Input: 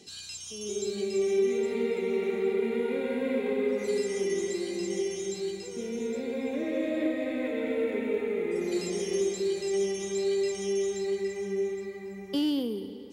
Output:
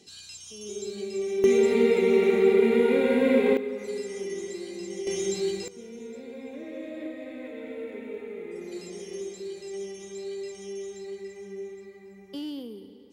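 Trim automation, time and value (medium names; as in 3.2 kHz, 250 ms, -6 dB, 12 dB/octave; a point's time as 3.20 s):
-3 dB
from 1.44 s +8 dB
from 3.57 s -4.5 dB
from 5.07 s +5 dB
from 5.68 s -8 dB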